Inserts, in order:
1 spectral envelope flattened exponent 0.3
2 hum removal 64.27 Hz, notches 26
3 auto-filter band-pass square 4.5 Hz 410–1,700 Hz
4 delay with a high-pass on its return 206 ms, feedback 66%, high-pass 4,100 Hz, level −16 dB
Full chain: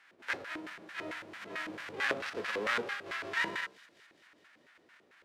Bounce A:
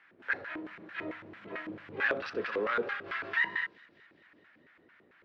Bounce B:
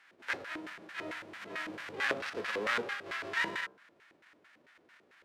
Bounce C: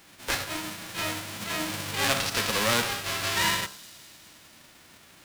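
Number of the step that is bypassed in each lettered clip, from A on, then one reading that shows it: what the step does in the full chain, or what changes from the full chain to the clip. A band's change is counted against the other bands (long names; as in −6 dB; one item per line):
1, 4 kHz band −7.5 dB
4, echo-to-direct ratio −27.0 dB to none audible
3, 8 kHz band +13.5 dB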